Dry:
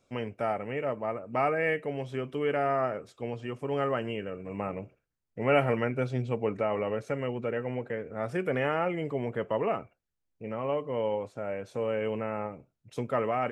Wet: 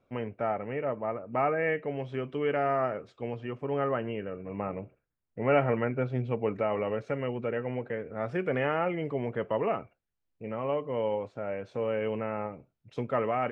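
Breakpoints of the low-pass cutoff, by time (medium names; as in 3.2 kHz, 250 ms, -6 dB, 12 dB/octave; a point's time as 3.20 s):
1.61 s 2.2 kHz
2.22 s 3.8 kHz
3.13 s 3.8 kHz
3.81 s 2.2 kHz
6.06 s 2.2 kHz
6.51 s 3.9 kHz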